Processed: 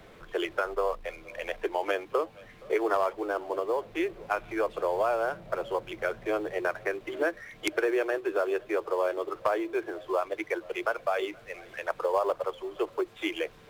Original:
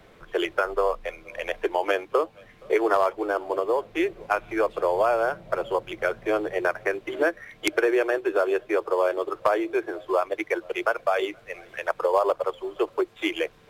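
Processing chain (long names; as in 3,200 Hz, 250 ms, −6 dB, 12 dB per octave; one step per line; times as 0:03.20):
mu-law and A-law mismatch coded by mu
level −5.5 dB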